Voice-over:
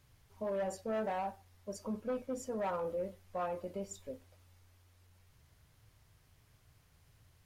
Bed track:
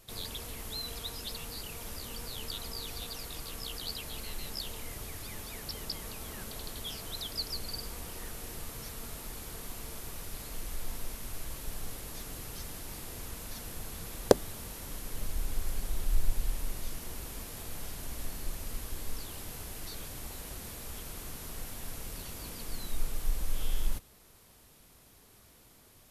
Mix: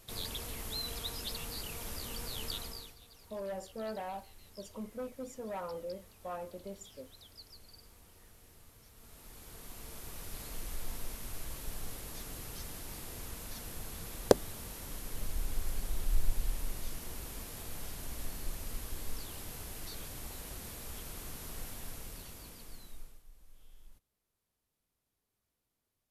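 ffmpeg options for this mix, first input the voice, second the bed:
ffmpeg -i stem1.wav -i stem2.wav -filter_complex "[0:a]adelay=2900,volume=-4dB[link_01];[1:a]volume=15.5dB,afade=type=out:start_time=2.53:duration=0.42:silence=0.133352,afade=type=in:start_time=8.92:duration=1.49:silence=0.16788,afade=type=out:start_time=21.66:duration=1.57:silence=0.0595662[link_02];[link_01][link_02]amix=inputs=2:normalize=0" out.wav

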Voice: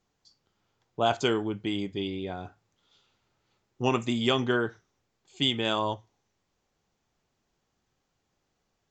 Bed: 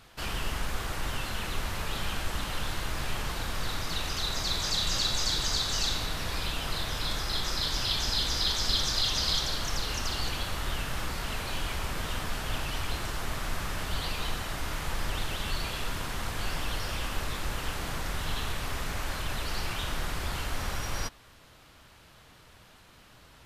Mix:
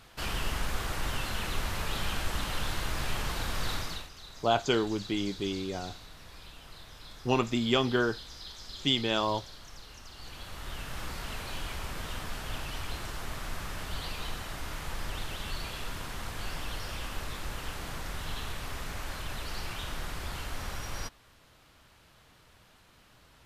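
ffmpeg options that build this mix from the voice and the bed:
ffmpeg -i stem1.wav -i stem2.wav -filter_complex "[0:a]adelay=3450,volume=-1dB[link_01];[1:a]volume=12.5dB,afade=type=out:start_time=3.74:duration=0.35:silence=0.141254,afade=type=in:start_time=10.13:duration=0.96:silence=0.237137[link_02];[link_01][link_02]amix=inputs=2:normalize=0" out.wav

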